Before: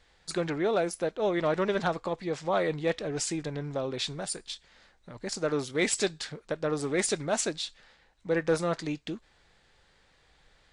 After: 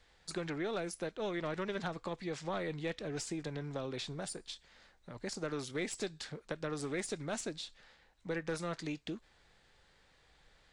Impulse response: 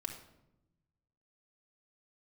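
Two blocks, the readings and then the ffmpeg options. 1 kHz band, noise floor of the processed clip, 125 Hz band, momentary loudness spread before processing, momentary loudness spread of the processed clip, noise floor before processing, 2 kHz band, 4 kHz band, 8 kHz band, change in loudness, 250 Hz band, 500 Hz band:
-10.0 dB, -68 dBFS, -6.5 dB, 10 LU, 8 LU, -65 dBFS, -8.0 dB, -8.5 dB, -11.0 dB, -9.5 dB, -7.5 dB, -10.5 dB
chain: -filter_complex "[0:a]aeval=exprs='0.158*(cos(1*acos(clip(val(0)/0.158,-1,1)))-cos(1*PI/2))+0.0126*(cos(2*acos(clip(val(0)/0.158,-1,1)))-cos(2*PI/2))':c=same,acrossover=split=350|1200[a][b][c];[a]acompressor=threshold=-37dB:ratio=4[d];[b]acompressor=threshold=-40dB:ratio=4[e];[c]acompressor=threshold=-39dB:ratio=4[f];[d][e][f]amix=inputs=3:normalize=0,volume=-3dB"

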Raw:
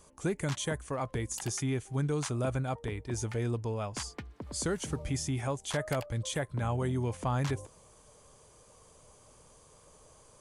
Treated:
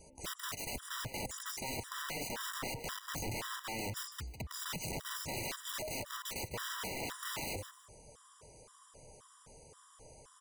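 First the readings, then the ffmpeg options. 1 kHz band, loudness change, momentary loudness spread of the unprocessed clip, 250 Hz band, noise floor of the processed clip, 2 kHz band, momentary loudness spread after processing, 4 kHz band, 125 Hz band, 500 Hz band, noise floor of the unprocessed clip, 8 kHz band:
-4.0 dB, -6.0 dB, 5 LU, -12.5 dB, -62 dBFS, -0.5 dB, 19 LU, +1.0 dB, -15.0 dB, -10.5 dB, -60 dBFS, -3.0 dB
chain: -filter_complex "[0:a]acrossover=split=4100[a][b];[b]acompressor=threshold=-43dB:ratio=4:attack=1:release=60[c];[a][c]amix=inputs=2:normalize=0,aeval=exprs='(mod(56.2*val(0)+1,2)-1)/56.2':c=same,asplit=2[d][e];[e]aecho=0:1:153|306:0.251|0.0477[f];[d][f]amix=inputs=2:normalize=0,afftfilt=real='re*gt(sin(2*PI*1.9*pts/sr)*(1-2*mod(floor(b*sr/1024/980),2)),0)':imag='im*gt(sin(2*PI*1.9*pts/sr)*(1-2*mod(floor(b*sr/1024/980),2)),0)':win_size=1024:overlap=0.75,volume=2.5dB"

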